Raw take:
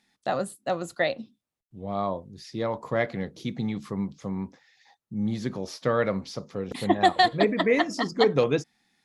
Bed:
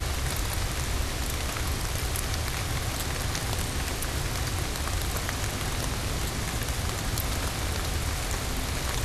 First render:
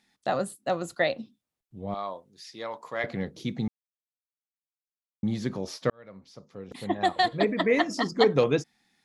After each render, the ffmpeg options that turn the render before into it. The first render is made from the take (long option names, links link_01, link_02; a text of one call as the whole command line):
ffmpeg -i in.wav -filter_complex "[0:a]asettb=1/sr,asplit=3[link_01][link_02][link_03];[link_01]atrim=end=1.944[link_04];[link_02]atrim=start=1.94:end=3.04,asetpts=PTS-STARTPTS,afade=type=in:duration=0.004:curve=qsin,afade=type=out:start_time=1.096:duration=0.004:curve=qsin,highpass=frequency=1200:poles=1[link_05];[link_03]atrim=start=3.036[link_06];[link_04][link_05]acrossfade=duration=0.004:curve1=hsin:curve2=qsin[link_07];[link_07][link_06]acrossfade=duration=0.004:curve1=qsin:curve2=hsin,asplit=4[link_08][link_09][link_10][link_11];[link_08]atrim=end=3.68,asetpts=PTS-STARTPTS,afade=type=out:start_time=3.676:duration=0.004:curve=hsin[link_12];[link_09]atrim=start=3.68:end=5.23,asetpts=PTS-STARTPTS,volume=0[link_13];[link_10]atrim=start=5.23:end=5.9,asetpts=PTS-STARTPTS,afade=type=in:duration=0.004:curve=hsin,afade=type=out:start_time=0.666:duration=0.004:curve=hsin[link_14];[link_11]atrim=start=5.9,asetpts=PTS-STARTPTS,afade=type=in:duration=2.05[link_15];[link_12][link_13][link_14][link_15]concat=n=4:v=0:a=1" out.wav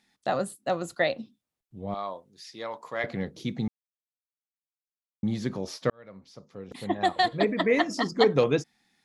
ffmpeg -i in.wav -af anull out.wav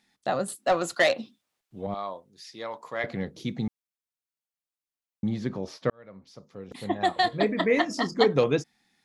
ffmpeg -i in.wav -filter_complex "[0:a]asettb=1/sr,asplit=3[link_01][link_02][link_03];[link_01]atrim=end=0.484[link_04];[link_02]atrim=start=0.48:end=1.87,asetpts=PTS-STARTPTS,afade=type=in:duration=0.004:curve=qsin,afade=type=out:start_time=1.386:duration=0.004:curve=qsin,asplit=2[link_05][link_06];[link_06]highpass=frequency=720:poles=1,volume=16dB,asoftclip=type=tanh:threshold=-12dB[link_07];[link_05][link_07]amix=inputs=2:normalize=0,lowpass=frequency=6500:poles=1,volume=-6dB[link_08];[link_03]atrim=start=1.866[link_09];[link_04][link_08]acrossfade=duration=0.004:curve1=hsin:curve2=qsin[link_10];[link_10][link_09]acrossfade=duration=0.004:curve1=qsin:curve2=hsin,asettb=1/sr,asplit=3[link_11][link_12][link_13];[link_11]atrim=end=5.294[link_14];[link_12]atrim=start=5.29:end=6.27,asetpts=PTS-STARTPTS,afade=type=in:duration=0.004:curve=qsin,afade=type=out:start_time=0.976:duration=0.004:curve=qsin,highshelf=frequency=5400:gain=-12[link_15];[link_13]atrim=start=6.266[link_16];[link_14][link_15]acrossfade=duration=0.004:curve1=hsin:curve2=qsin[link_17];[link_17][link_16]acrossfade=duration=0.004:curve1=qsin:curve2=hsin,asettb=1/sr,asplit=3[link_18][link_19][link_20];[link_18]atrim=end=6.814[link_21];[link_19]atrim=start=6.81:end=8.26,asetpts=PTS-STARTPTS,afade=type=in:duration=0.004:curve=qsin,afade=type=out:start_time=1.446:duration=0.004:curve=qsin,asplit=2[link_22][link_23];[link_23]adelay=28,volume=-14dB[link_24];[link_22][link_24]amix=inputs=2:normalize=0,atrim=end_sample=63945[link_25];[link_20]atrim=start=8.256[link_26];[link_21][link_25]acrossfade=duration=0.004:curve1=hsin:curve2=qsin[link_27];[link_27][link_26]acrossfade=duration=0.004:curve1=qsin:curve2=hsin" out.wav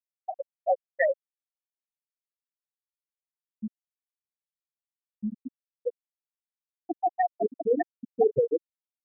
ffmpeg -i in.wav -af "afftfilt=real='re*gte(hypot(re,im),0.501)':imag='im*gte(hypot(re,im),0.501)':win_size=1024:overlap=0.75" out.wav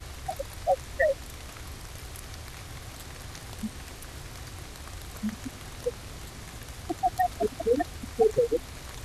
ffmpeg -i in.wav -i bed.wav -filter_complex "[1:a]volume=-12dB[link_01];[0:a][link_01]amix=inputs=2:normalize=0" out.wav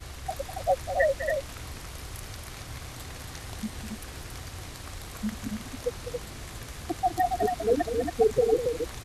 ffmpeg -i in.wav -af "aecho=1:1:201.2|277:0.316|0.562" out.wav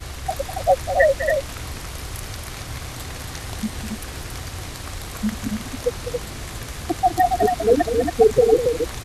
ffmpeg -i in.wav -af "volume=8dB" out.wav